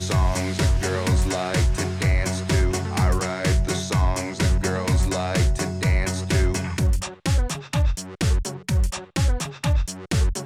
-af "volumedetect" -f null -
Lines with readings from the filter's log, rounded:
mean_volume: -21.4 dB
max_volume: -11.1 dB